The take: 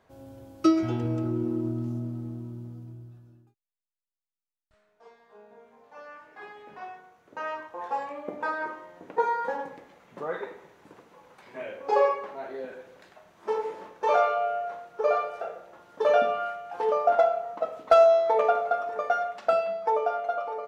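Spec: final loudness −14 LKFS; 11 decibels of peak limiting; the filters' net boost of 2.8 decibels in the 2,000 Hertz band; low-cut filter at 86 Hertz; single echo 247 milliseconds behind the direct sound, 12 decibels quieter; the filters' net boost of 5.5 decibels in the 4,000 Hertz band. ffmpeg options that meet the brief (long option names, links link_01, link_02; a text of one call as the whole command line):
ffmpeg -i in.wav -af "highpass=86,equalizer=frequency=2000:width_type=o:gain=3,equalizer=frequency=4000:width_type=o:gain=6,alimiter=limit=-17.5dB:level=0:latency=1,aecho=1:1:247:0.251,volume=15dB" out.wav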